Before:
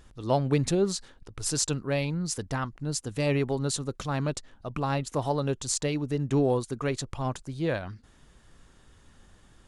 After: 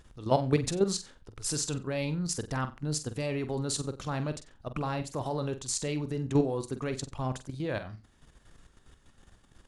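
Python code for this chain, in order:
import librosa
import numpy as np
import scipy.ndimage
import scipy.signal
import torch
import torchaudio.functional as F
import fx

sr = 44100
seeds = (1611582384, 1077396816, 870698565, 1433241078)

p1 = fx.level_steps(x, sr, step_db=11)
p2 = p1 + fx.room_flutter(p1, sr, wall_m=7.9, rt60_s=0.26, dry=0)
y = p2 * librosa.db_to_amplitude(1.5)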